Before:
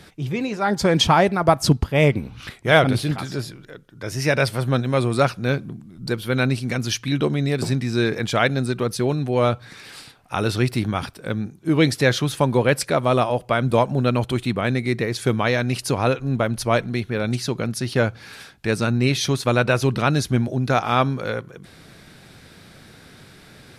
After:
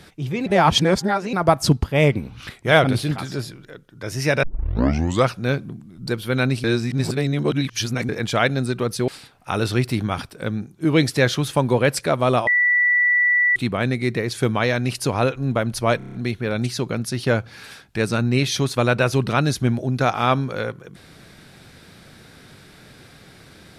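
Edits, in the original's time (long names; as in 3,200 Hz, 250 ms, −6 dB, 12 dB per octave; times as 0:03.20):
0:00.46–0:01.33: reverse
0:04.43: tape start 0.86 s
0:06.64–0:08.09: reverse
0:09.08–0:09.92: remove
0:13.31–0:14.40: beep over 1,960 Hz −14 dBFS
0:16.82: stutter 0.03 s, 6 plays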